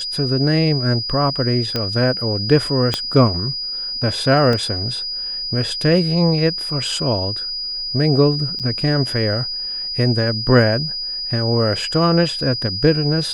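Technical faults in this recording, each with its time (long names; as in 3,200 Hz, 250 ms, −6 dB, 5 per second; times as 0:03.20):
whistle 4,900 Hz −23 dBFS
0:01.76: click −7 dBFS
0:02.94: click −5 dBFS
0:04.53: drop-out 2.2 ms
0:08.59–0:08.60: drop-out 7.5 ms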